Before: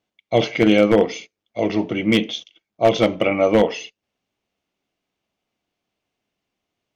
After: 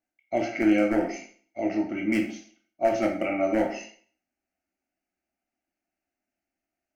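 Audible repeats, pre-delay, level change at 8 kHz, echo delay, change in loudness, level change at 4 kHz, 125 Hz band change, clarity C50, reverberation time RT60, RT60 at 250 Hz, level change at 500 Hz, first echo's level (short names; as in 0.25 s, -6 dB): none, 7 ms, n/a, none, -7.5 dB, -18.5 dB, -14.0 dB, 7.5 dB, 0.45 s, 0.50 s, -9.5 dB, none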